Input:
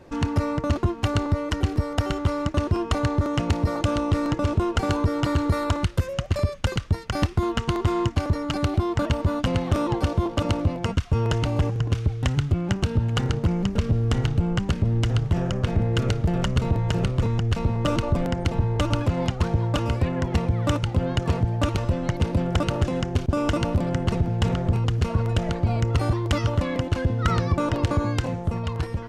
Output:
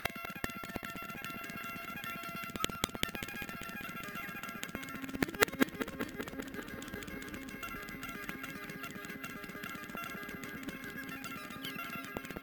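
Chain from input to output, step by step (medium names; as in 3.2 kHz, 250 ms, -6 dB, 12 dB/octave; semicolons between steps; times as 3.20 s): Bessel low-pass 3.4 kHz; gate -28 dBFS, range -52 dB; resonant low shelf 520 Hz -8.5 dB, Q 3; upward compressor, threshold -31 dBFS; inverted gate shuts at -25 dBFS, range -29 dB; filtered feedback delay 454 ms, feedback 78%, low-pass 2 kHz, level -10 dB; speed mistake 33 rpm record played at 78 rpm; careless resampling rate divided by 3×, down none, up hold; trim +12.5 dB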